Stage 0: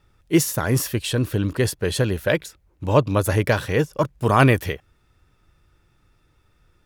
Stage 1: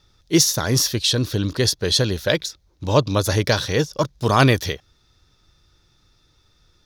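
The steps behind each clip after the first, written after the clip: high-order bell 4.7 kHz +13 dB 1.1 oct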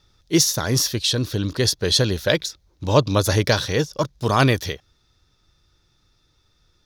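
gain riding 2 s; trim -1.5 dB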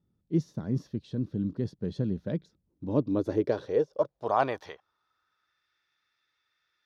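band-pass sweep 200 Hz -> 1.9 kHz, 2.60–5.69 s; trim -1 dB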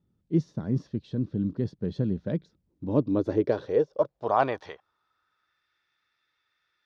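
distance through air 82 m; trim +2.5 dB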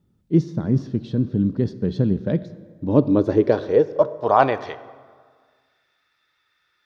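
plate-style reverb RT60 1.7 s, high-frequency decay 0.65×, DRR 14 dB; trim +7.5 dB

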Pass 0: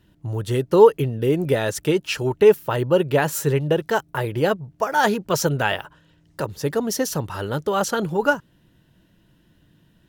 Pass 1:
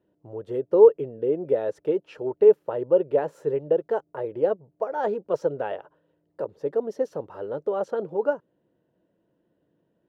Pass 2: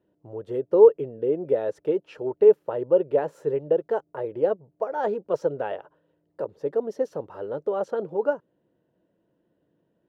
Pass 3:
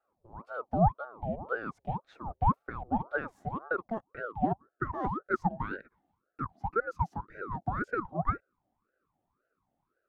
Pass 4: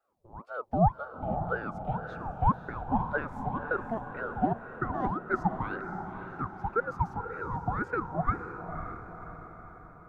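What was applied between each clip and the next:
band-pass filter 500 Hz, Q 2.4
no audible change
high-pass sweep 160 Hz -> 470 Hz, 3.55–4.69 s; ring modulator with a swept carrier 620 Hz, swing 65%, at 1.9 Hz; trim -9 dB
echo that smears into a reverb 542 ms, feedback 53%, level -8 dB; trim +1 dB

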